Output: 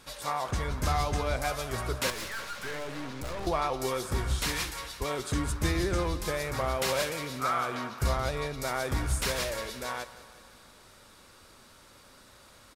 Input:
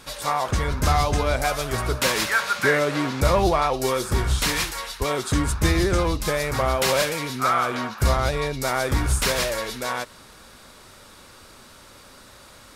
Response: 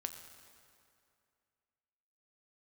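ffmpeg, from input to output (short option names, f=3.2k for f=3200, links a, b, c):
-filter_complex "[0:a]asettb=1/sr,asplit=3[a][b][c];[a]atrim=end=2.104[d];[b]atrim=start=2.1:end=3.47,asetpts=PTS-STARTPTS,afade=t=in:d=0.004:c=qsin,afade=t=out:st=1.366:d=0.004:c=qsin,aeval=exprs='(tanh(22.4*val(0)+0.6)-tanh(0.6))/22.4':c=same[e];[c]atrim=start=3.466[f];[d][e]acrossfade=d=0.004:c1=hsin:c2=qsin[g];[g][f]acrossfade=d=0.004:c1=qsin:c2=hsin,aecho=1:1:176|352|528|704|880|1056:0.158|0.0935|0.0552|0.0326|0.0192|0.0113,volume=-8dB"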